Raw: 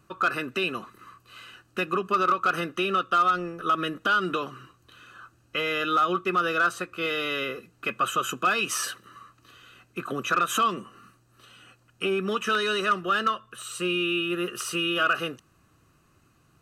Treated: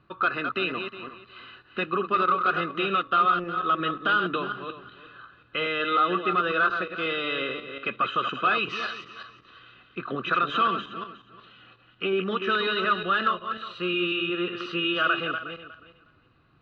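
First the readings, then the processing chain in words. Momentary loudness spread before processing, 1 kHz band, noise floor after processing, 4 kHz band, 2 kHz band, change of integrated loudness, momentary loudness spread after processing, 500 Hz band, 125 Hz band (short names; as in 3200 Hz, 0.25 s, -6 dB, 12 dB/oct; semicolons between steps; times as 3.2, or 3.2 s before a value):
10 LU, +0.5 dB, -59 dBFS, 0.0 dB, +0.5 dB, 0.0 dB, 16 LU, 0.0 dB, -0.5 dB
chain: regenerating reverse delay 0.181 s, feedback 41%, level -7 dB; elliptic low-pass 4000 Hz, stop band 70 dB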